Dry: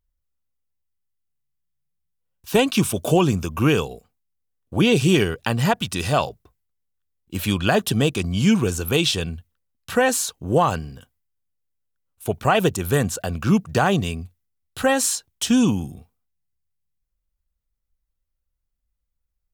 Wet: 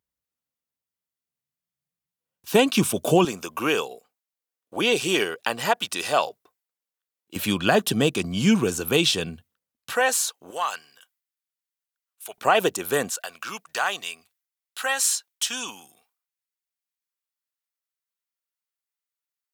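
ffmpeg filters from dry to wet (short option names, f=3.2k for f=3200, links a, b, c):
-af "asetnsamples=n=441:p=0,asendcmd='3.25 highpass f 450;7.36 highpass f 180;9.92 highpass f 610;10.51 highpass f 1300;12.38 highpass f 370;13.1 highpass f 1100',highpass=170"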